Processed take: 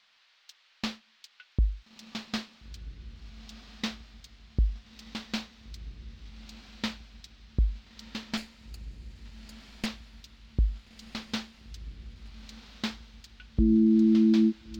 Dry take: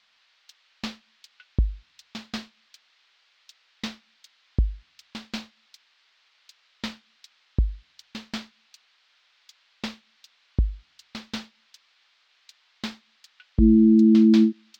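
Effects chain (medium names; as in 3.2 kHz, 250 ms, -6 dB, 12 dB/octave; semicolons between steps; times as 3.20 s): 8.37–9.86 s: comb filter that takes the minimum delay 0.42 ms; peak limiter -15 dBFS, peak gain reduction 7.5 dB; echo that smears into a reverb 1392 ms, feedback 43%, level -13 dB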